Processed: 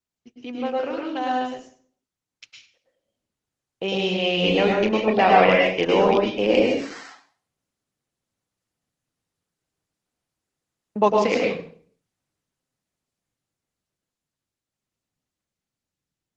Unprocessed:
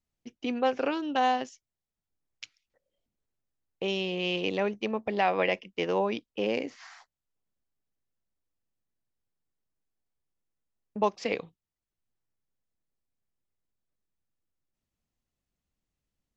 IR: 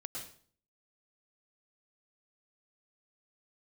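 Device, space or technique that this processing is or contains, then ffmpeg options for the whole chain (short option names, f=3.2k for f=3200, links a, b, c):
far-field microphone of a smart speaker: -filter_complex "[0:a]asettb=1/sr,asplit=3[a][b][c];[a]atrim=end=3.854[d];[b]atrim=start=3.85:end=5.85,asetpts=PTS-STARTPTS,afade=t=in:d=0.004:c=qsin,afade=t=out:st=1.996:d=0.004:c=qsin,asplit=2[e][f];[f]adelay=32,volume=-8.5dB[g];[e][g]amix=inputs=2:normalize=0,atrim=end_sample=88200[h];[c]atrim=start=5.846[i];[d][h]acrossfade=d=0.004:c1=hsin:c2=qsin[j];[j][i]acrossfade=d=0.004:c1=qsin:c2=hsin[k];[1:a]atrim=start_sample=2205[l];[k][l]afir=irnorm=-1:irlink=0,highpass=89,dynaudnorm=f=520:g=13:m=11dB,volume=1.5dB" -ar 48000 -c:a libopus -b:a 16k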